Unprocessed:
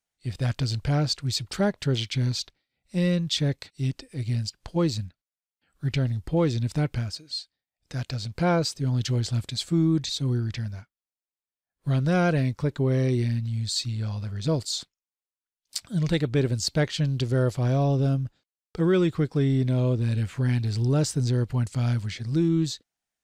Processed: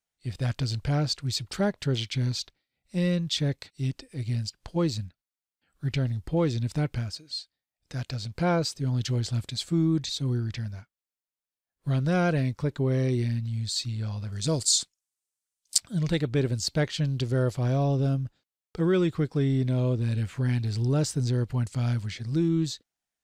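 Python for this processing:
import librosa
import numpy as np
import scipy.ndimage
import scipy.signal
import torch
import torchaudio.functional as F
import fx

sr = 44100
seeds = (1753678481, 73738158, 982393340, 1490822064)

y = fx.peak_eq(x, sr, hz=8100.0, db=14.5, octaves=1.5, at=(14.32, 15.78))
y = F.gain(torch.from_numpy(y), -2.0).numpy()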